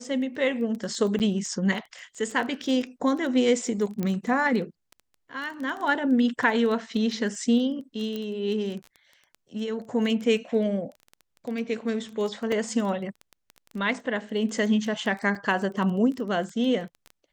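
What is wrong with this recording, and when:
surface crackle 12 per second −31 dBFS
0:01.19–0:01.20: drop-out 9 ms
0:04.03: click −16 dBFS
0:08.16: click −20 dBFS
0:12.52: drop-out 3.1 ms
0:15.35: drop-out 4.6 ms

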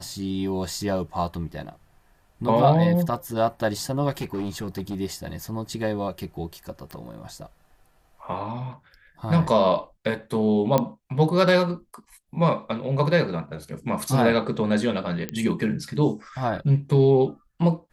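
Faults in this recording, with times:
0:04.17–0:04.96: clipping −25 dBFS
0:06.91: click −22 dBFS
0:10.78: click −8 dBFS
0:15.29: click −13 dBFS

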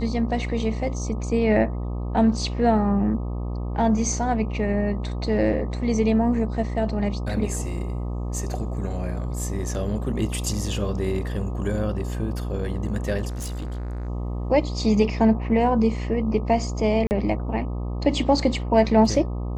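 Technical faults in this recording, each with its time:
mains buzz 60 Hz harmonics 21 −28 dBFS
0:13.28–0:14.09: clipping −27.5 dBFS
0:17.07–0:17.11: drop-out 39 ms

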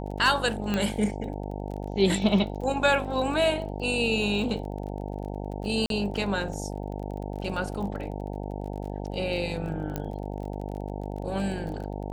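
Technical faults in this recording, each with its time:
mains buzz 50 Hz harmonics 18 −34 dBFS
surface crackle 28 per second −36 dBFS
0:00.74: click −14 dBFS
0:05.86–0:05.90: drop-out 42 ms
0:09.96: click −16 dBFS

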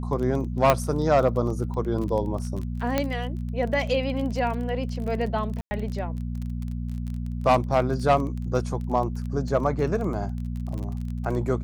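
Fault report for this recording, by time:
surface crackle 23 per second −31 dBFS
mains hum 60 Hz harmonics 4 −30 dBFS
0:00.70: click −4 dBFS
0:02.98: click −9 dBFS
0:05.61–0:05.71: drop-out 100 ms

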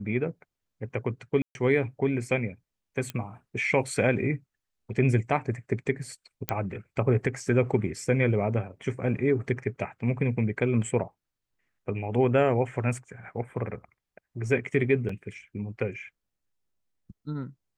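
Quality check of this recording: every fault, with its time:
0:01.42–0:01.55: drop-out 131 ms
0:03.10: click −17 dBFS
0:06.49: click −9 dBFS
0:15.09: drop-out 3.9 ms

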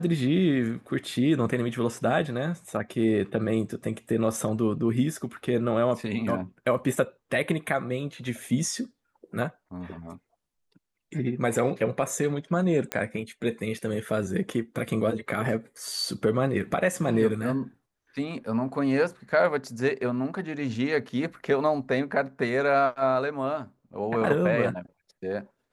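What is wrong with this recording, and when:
0:12.92: click −11 dBFS

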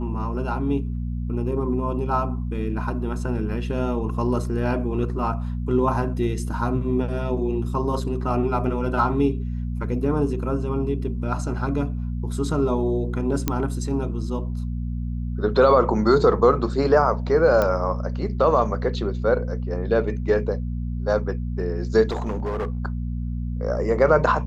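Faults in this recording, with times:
mains hum 60 Hz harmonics 4 −27 dBFS
0:13.48: click −7 dBFS
0:17.62: click −9 dBFS
0:22.10–0:22.79: clipping −22 dBFS

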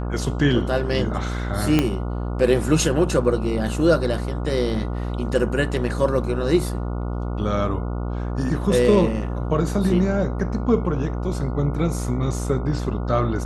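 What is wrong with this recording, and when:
mains buzz 60 Hz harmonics 24 −26 dBFS
0:01.79: click −5 dBFS

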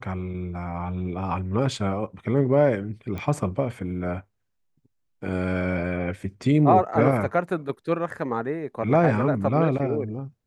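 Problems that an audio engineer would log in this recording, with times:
0:03.18: click −21 dBFS

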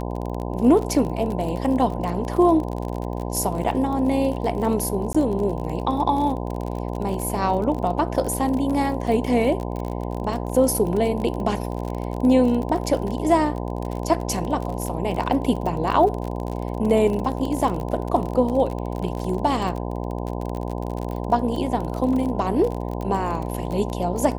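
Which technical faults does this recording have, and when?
mains buzz 60 Hz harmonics 17 −28 dBFS
surface crackle 36 per second −27 dBFS
0:05.13–0:05.14: drop-out 15 ms

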